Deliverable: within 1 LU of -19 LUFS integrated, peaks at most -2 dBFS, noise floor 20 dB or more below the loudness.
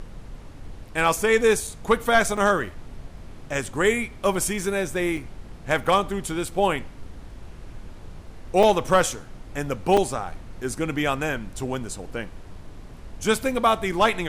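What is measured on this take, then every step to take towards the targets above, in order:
dropouts 6; longest dropout 4.3 ms; noise floor -42 dBFS; noise floor target -44 dBFS; loudness -23.5 LUFS; peak level -8.0 dBFS; loudness target -19.0 LUFS
-> interpolate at 1.67/2.37/5.17/5.84/8.63/9.97 s, 4.3 ms; noise print and reduce 6 dB; trim +4.5 dB

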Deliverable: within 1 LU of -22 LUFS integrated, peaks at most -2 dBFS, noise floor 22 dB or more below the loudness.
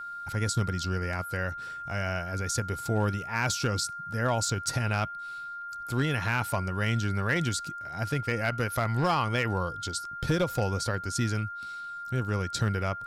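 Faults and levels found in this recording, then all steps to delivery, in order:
clipped samples 0.3%; clipping level -19.0 dBFS; steady tone 1.4 kHz; tone level -36 dBFS; loudness -30.0 LUFS; peak level -19.0 dBFS; loudness target -22.0 LUFS
-> clip repair -19 dBFS; band-stop 1.4 kHz, Q 30; trim +8 dB

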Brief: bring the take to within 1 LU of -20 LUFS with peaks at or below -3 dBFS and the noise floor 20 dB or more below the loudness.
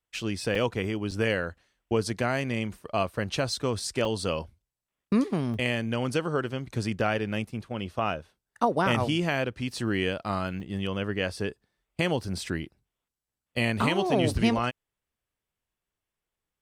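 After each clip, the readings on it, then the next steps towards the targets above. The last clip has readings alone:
dropouts 5; longest dropout 3.6 ms; loudness -29.0 LUFS; peak level -9.5 dBFS; loudness target -20.0 LUFS
-> interpolate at 0.55/1.11/4.05/5.54/10.60 s, 3.6 ms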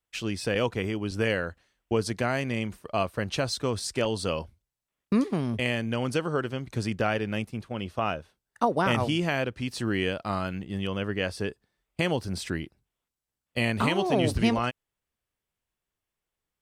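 dropouts 0; loudness -29.0 LUFS; peak level -9.5 dBFS; loudness target -20.0 LUFS
-> trim +9 dB; peak limiter -3 dBFS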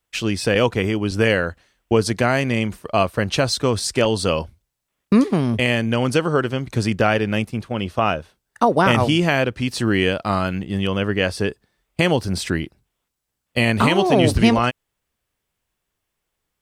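loudness -20.0 LUFS; peak level -3.0 dBFS; noise floor -79 dBFS

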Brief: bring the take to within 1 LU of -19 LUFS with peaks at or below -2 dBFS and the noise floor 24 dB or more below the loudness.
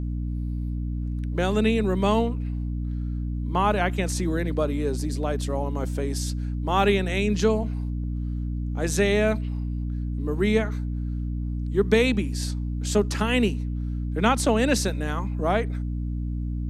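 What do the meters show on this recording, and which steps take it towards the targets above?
hum 60 Hz; highest harmonic 300 Hz; hum level -26 dBFS; loudness -25.5 LUFS; peak level -6.0 dBFS; loudness target -19.0 LUFS
-> hum notches 60/120/180/240/300 Hz; trim +6.5 dB; peak limiter -2 dBFS

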